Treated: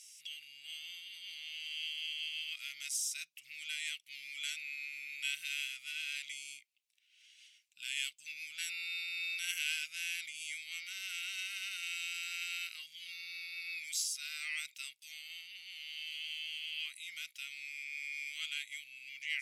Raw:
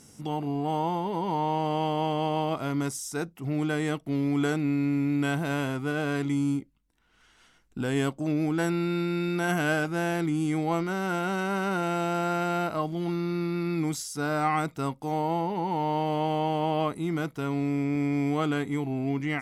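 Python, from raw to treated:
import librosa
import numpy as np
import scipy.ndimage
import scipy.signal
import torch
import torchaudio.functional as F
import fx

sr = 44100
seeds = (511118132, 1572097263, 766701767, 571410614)

y = scipy.signal.sosfilt(scipy.signal.ellip(4, 1.0, 60, 2400.0, 'highpass', fs=sr, output='sos'), x)
y = fx.high_shelf(y, sr, hz=3500.0, db=-8.0)
y = y * 10.0 ** (7.5 / 20.0)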